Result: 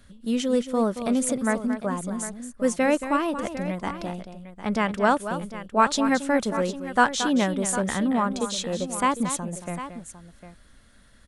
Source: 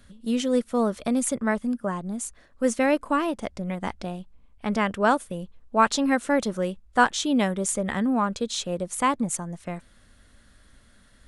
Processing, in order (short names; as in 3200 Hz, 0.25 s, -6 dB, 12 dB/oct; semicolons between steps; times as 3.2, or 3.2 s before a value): tapped delay 0.226/0.753 s -10.5/-13 dB